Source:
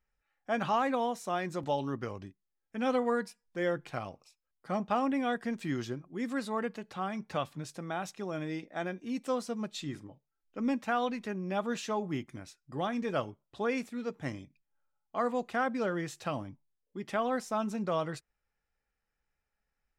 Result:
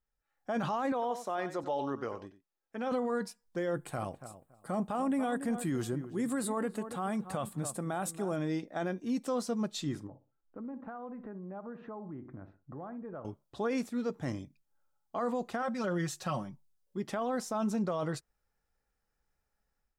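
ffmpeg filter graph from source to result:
-filter_complex "[0:a]asettb=1/sr,asplit=3[a][b][c];[a]atrim=end=0.924[d];[b]atrim=start=0.92:end=2.92,asetpts=PTS-STARTPTS,afade=t=in:d=0.004:c=qsin,afade=t=out:st=1.996:d=0.004:c=qsin,bass=f=250:g=-13,treble=f=4k:g=-8,aecho=1:1:94:0.211,atrim=end_sample=88200[e];[c]atrim=start=2.916[f];[d][e]acrossfade=d=0.004:c1=hsin:c2=qsin[g];[g][f]acrossfade=d=0.004:c1=qsin:c2=hsin,asettb=1/sr,asplit=3[h][i][j];[h]atrim=end=3.744[k];[i]atrim=start=3.74:end=8.36,asetpts=PTS-STARTPTS,afade=t=in:d=0.004:c=qsin,afade=t=out:st=4.616:d=0.004:c=qsin,highshelf=f=7k:t=q:w=3:g=7,asplit=2[l][m];[m]adelay=281,lowpass=f=1.5k:p=1,volume=-13.5dB,asplit=2[n][o];[o]adelay=281,lowpass=f=1.5k:p=1,volume=0.2[p];[l][n][p]amix=inputs=3:normalize=0,atrim=end_sample=203742[q];[j]atrim=start=8.356[r];[k][q]acrossfade=d=0.004:c1=hsin:c2=qsin[s];[s][r]acrossfade=d=0.004:c1=qsin:c2=hsin,asettb=1/sr,asplit=3[t][u][v];[t]atrim=end=10.074[w];[u]atrim=start=10.07:end=13.25,asetpts=PTS-STARTPTS,afade=t=in:d=0.004:c=qsin,afade=t=out:st=3.176:d=0.004:c=qsin,lowpass=f=1.6k:w=0.5412,lowpass=f=1.6k:w=1.3066,asplit=2[x][y];[y]adelay=61,lowpass=f=1.1k:p=1,volume=-14.5dB,asplit=2[z][aa];[aa]adelay=61,lowpass=f=1.1k:p=1,volume=0.32,asplit=2[ab][ac];[ac]adelay=61,lowpass=f=1.1k:p=1,volume=0.32[ad];[x][z][ab][ad]amix=inputs=4:normalize=0,atrim=end_sample=140238,acompressor=threshold=-46dB:ratio=4:attack=3.2:release=140:knee=1:detection=peak[ae];[v]atrim=start=13.246[af];[w][ae]acrossfade=d=0.004:c1=hsin:c2=qsin[ag];[ag][af]acrossfade=d=0.004:c1=qsin:c2=hsin,asettb=1/sr,asplit=3[ah][ai][aj];[ah]atrim=end=15.624[ak];[ai]atrim=start=15.62:end=16.98,asetpts=PTS-STARTPTS,afade=t=in:d=0.004:c=qsin,afade=t=out:st=1.356:d=0.004:c=qsin,equalizer=f=350:w=0.74:g=-5.5,aecho=1:1:5.4:0.71,atrim=end_sample=59976[al];[aj]atrim=start=16.976[am];[ak][al]acrossfade=d=0.004:c1=hsin:c2=qsin[an];[an][am]acrossfade=d=0.004:c1=qsin:c2=hsin,equalizer=f=2.4k:w=1.3:g=-7.5,dynaudnorm=f=230:g=3:m=9dB,alimiter=limit=-20dB:level=0:latency=1:release=11,volume=-5dB"

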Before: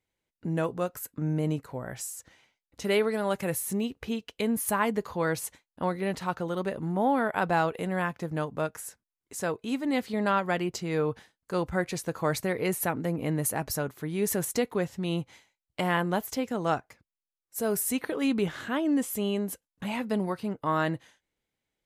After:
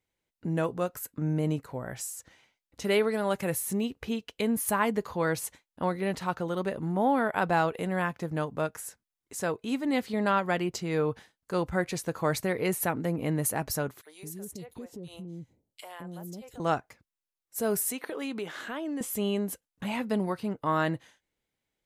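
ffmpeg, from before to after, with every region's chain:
-filter_complex "[0:a]asettb=1/sr,asplit=3[a][b][c];[a]atrim=end=14.014[d];[b]atrim=start=14.01:end=16.6,asetpts=PTS-STARTPTS,afade=t=in:d=0.004:c=qsin,afade=t=out:st=2.586:d=0.004:c=qsin,equalizer=f=1.5k:w=0.5:g=-11,acrossover=split=550|2400[e][f][g];[f]adelay=40[h];[e]adelay=210[i];[i][h][g]amix=inputs=3:normalize=0,atrim=end_sample=114219,acompressor=threshold=-42dB:ratio=2.5:attack=3.2:release=140:knee=1:detection=peak[j];[c]atrim=start=16.596[k];[d][j]acrossfade=d=0.004:c1=hsin:c2=qsin[l];[l][k]acrossfade=d=0.004:c1=qsin:c2=hsin,asettb=1/sr,asplit=3[m][n][o];[m]atrim=end=17.904[p];[n]atrim=start=17.9:end=19.01,asetpts=PTS-STARTPTS,afade=t=in:d=0.004:c=qsin,afade=t=out:st=1.106:d=0.004:c=qsin,highpass=310,acompressor=threshold=-32dB:ratio=3:attack=3.2:release=140:knee=1:detection=peak[q];[o]atrim=start=19.006[r];[p][q]acrossfade=d=0.004:c1=hsin:c2=qsin[s];[s][r]acrossfade=d=0.004:c1=qsin:c2=hsin"

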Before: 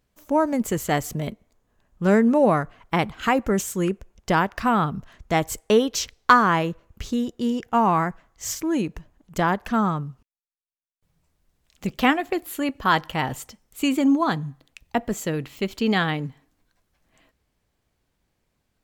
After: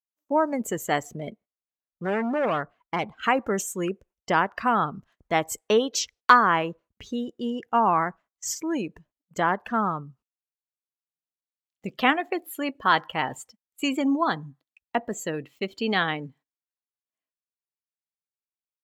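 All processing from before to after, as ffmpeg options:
-filter_complex "[0:a]asettb=1/sr,asplit=3[a][b][c];[a]atrim=end=1.034[d];[b]atrim=start=1.03:end=3.23,asetpts=PTS-STARTPTS,afade=t=in:d=0.004:c=qsin,afade=t=out:st=2.196:d=0.004:c=qsin,highshelf=f=5.4k:g=-6.5,volume=19.5dB,asoftclip=hard,volume=-19.5dB[e];[c]atrim=start=3.226[f];[d][e]acrossfade=d=0.004:c1=hsin:c2=qsin[g];[g][f]acrossfade=d=0.004:c1=qsin:c2=hsin,afftdn=nr=16:nf=-37,agate=range=-19dB:threshold=-47dB:ratio=16:detection=peak,highpass=f=410:p=1"

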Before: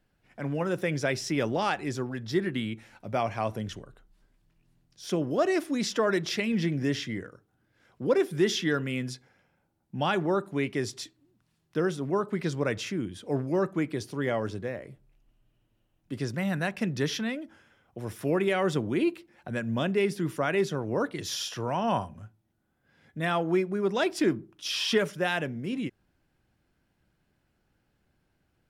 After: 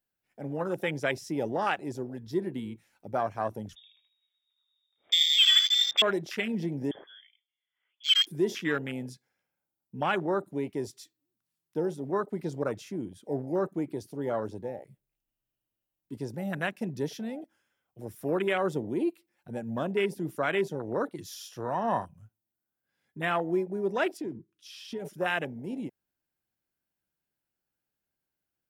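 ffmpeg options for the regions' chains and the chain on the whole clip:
-filter_complex "[0:a]asettb=1/sr,asplit=3[a][b][c];[a]atrim=end=3.754[d];[b]atrim=start=3.75:end=6.02,asetpts=PTS-STARTPTS,afade=t=in:d=0.004:c=qsin,afade=t=out:st=2.266:d=0.004:c=qsin,aecho=1:1:78|156|234|312:0.596|0.155|0.0403|0.0105,atrim=end_sample=100107,lowpass=f=3.2k:t=q:w=0.5098,lowpass=f=3.2k:t=q:w=0.6013,lowpass=f=3.2k:t=q:w=0.9,lowpass=f=3.2k:t=q:w=2.563,afreqshift=-3800[e];[c]atrim=start=6.016[f];[d][e]acrossfade=d=0.004:c1=hsin:c2=qsin[g];[g][f]acrossfade=d=0.004:c1=qsin:c2=hsin,asettb=1/sr,asplit=3[h][i][j];[h]atrim=end=6.914[k];[i]atrim=start=6.91:end=8.27,asetpts=PTS-STARTPTS,afade=t=in:d=0.004:c=qsin,afade=t=out:st=1.356:d=0.004:c=qsin,highpass=f=430:p=1,lowpass=f=3.1k:t=q:w=0.5098,lowpass=f=3.1k:t=q:w=0.6013,lowpass=f=3.1k:t=q:w=0.9,lowpass=f=3.1k:t=q:w=2.563,afreqshift=-3600[l];[j]atrim=start=8.266[m];[k][l]acrossfade=d=0.004:c1=hsin:c2=qsin[n];[n][m]acrossfade=d=0.004:c1=qsin:c2=hsin,asettb=1/sr,asplit=3[o][p][q];[o]atrim=end=24.174[r];[p]atrim=start=24.17:end=25.05,asetpts=PTS-STARTPTS,afade=t=in:d=0.004:c=qsin,afade=t=out:st=0.876:d=0.004:c=qsin,lowpass=f=3.6k:p=1,equalizer=f=790:t=o:w=0.99:g=-13.5,acompressor=threshold=-29dB:ratio=4:attack=3.2:release=140:knee=1:detection=peak[s];[q]atrim=start=25.046[t];[r][s]acrossfade=d=0.004:c1=hsin:c2=qsin[u];[u][t]acrossfade=d=0.004:c1=qsin:c2=hsin,lowshelf=f=100:g=6,afwtdn=0.0282,aemphasis=mode=production:type=bsi"

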